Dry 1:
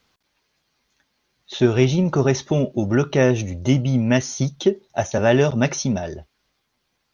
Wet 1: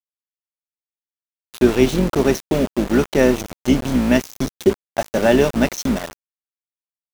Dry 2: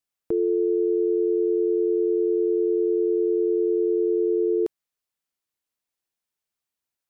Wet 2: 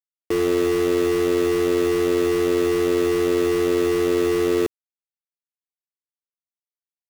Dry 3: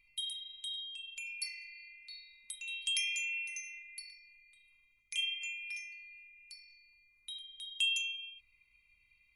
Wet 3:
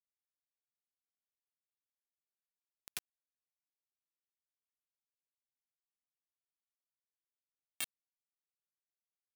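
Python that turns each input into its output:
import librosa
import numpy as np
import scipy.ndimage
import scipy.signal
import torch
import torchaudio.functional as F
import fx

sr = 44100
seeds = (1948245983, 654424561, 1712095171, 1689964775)

y = fx.octave_divider(x, sr, octaves=2, level_db=1.0)
y = fx.low_shelf_res(y, sr, hz=160.0, db=-10.0, q=1.5)
y = np.where(np.abs(y) >= 10.0 ** (-23.5 / 20.0), y, 0.0)
y = y * librosa.db_to_amplitude(1.0)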